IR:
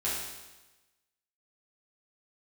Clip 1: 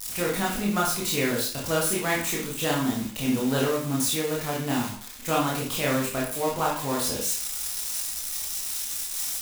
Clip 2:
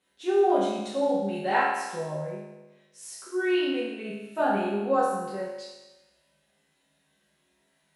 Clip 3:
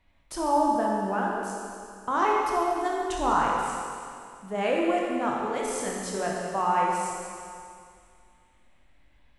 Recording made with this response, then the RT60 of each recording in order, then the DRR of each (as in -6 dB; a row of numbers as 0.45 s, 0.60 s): 2; 0.50 s, 1.1 s, 2.3 s; -4.5 dB, -9.0 dB, -3.0 dB